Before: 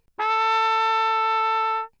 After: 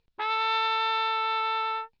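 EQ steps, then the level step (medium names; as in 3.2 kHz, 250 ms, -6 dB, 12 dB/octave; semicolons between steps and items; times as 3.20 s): resonant low-pass 3.9 kHz, resonance Q 2.7; -7.0 dB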